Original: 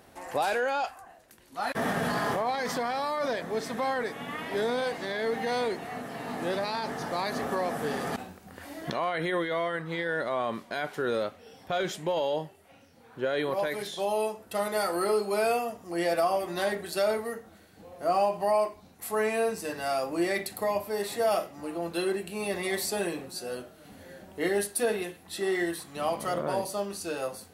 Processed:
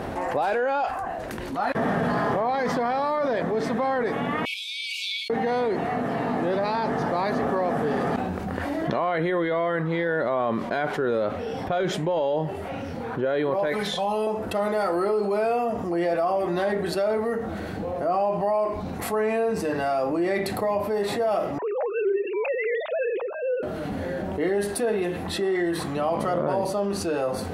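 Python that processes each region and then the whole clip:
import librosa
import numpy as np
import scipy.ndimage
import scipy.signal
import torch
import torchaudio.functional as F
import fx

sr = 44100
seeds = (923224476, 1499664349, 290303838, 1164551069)

y = fx.chain(x, sr, fx.over_compress(threshold_db=-32.0, ratio=-0.5),
    fx.brickwall_highpass(low_hz=2200.0), at=(4.45, 5.3))
y = fx.chain(y, sr, fx.peak_eq(hz=320.0, db=-12.0, octaves=0.68),
    fx.comb(ms=4.0, depth=0.64), at=(13.72, 14.27))
y = fx.chain(y, sr, fx.sine_speech(),
    fx.highpass(hz=190.0, slope=12), at=(21.58, 23.63))
y = fx.lowpass(y, sr, hz=1100.0, slope=6)
y = fx.env_flatten(y, sr, amount_pct=70)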